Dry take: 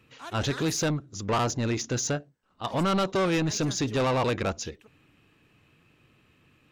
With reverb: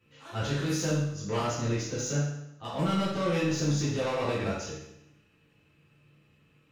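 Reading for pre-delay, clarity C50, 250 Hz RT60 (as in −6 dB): 7 ms, 1.0 dB, 0.85 s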